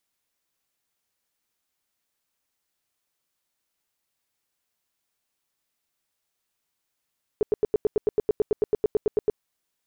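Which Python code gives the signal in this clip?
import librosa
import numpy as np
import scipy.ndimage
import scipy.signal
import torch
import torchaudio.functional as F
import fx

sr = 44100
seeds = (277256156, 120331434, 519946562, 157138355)

y = fx.tone_burst(sr, hz=424.0, cycles=8, every_s=0.11, bursts=18, level_db=-16.5)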